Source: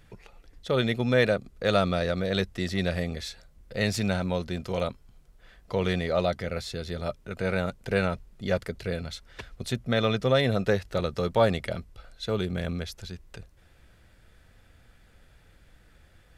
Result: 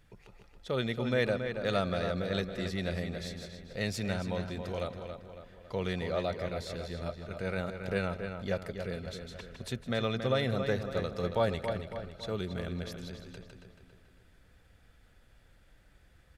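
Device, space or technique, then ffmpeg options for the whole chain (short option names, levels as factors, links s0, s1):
ducked delay: -filter_complex "[0:a]asplit=3[s0][s1][s2];[s1]adelay=156,volume=0.631[s3];[s2]apad=whole_len=729190[s4];[s3][s4]sidechaincompress=threshold=0.00794:ratio=8:attack=16:release=219[s5];[s0][s5]amix=inputs=2:normalize=0,asplit=2[s6][s7];[s7]adelay=277,lowpass=f=4100:p=1,volume=0.447,asplit=2[s8][s9];[s9]adelay=277,lowpass=f=4100:p=1,volume=0.49,asplit=2[s10][s11];[s11]adelay=277,lowpass=f=4100:p=1,volume=0.49,asplit=2[s12][s13];[s13]adelay=277,lowpass=f=4100:p=1,volume=0.49,asplit=2[s14][s15];[s15]adelay=277,lowpass=f=4100:p=1,volume=0.49,asplit=2[s16][s17];[s17]adelay=277,lowpass=f=4100:p=1,volume=0.49[s18];[s6][s8][s10][s12][s14][s16][s18]amix=inputs=7:normalize=0,volume=0.447"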